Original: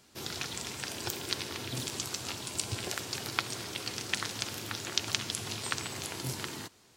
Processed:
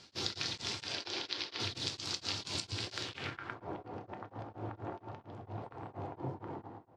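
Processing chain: 0.87–1.6 three-band isolator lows -14 dB, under 270 Hz, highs -23 dB, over 5900 Hz; compressor 10:1, threshold -38 dBFS, peak gain reduction 16 dB; low-pass sweep 4700 Hz -> 800 Hz, 2.97–3.64; feedback echo 0.11 s, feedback 32%, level -9 dB; on a send at -8 dB: reverb, pre-delay 5 ms; on the sum: beating tremolo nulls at 4.3 Hz; gain +3 dB

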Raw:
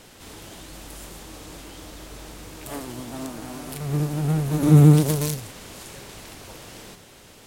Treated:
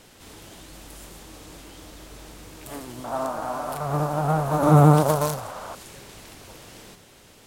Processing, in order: 3.04–5.75 band shelf 880 Hz +16 dB; gain -3 dB

